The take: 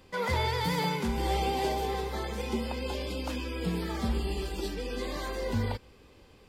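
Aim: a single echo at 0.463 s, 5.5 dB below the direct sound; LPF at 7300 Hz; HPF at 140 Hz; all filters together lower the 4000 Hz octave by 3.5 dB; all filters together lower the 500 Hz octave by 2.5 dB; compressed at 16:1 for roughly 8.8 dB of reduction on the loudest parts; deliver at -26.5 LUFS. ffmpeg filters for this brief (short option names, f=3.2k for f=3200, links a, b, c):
-af "highpass=140,lowpass=7.3k,equalizer=f=500:t=o:g=-3,equalizer=f=4k:t=o:g=-4,acompressor=threshold=-36dB:ratio=16,aecho=1:1:463:0.531,volume=13.5dB"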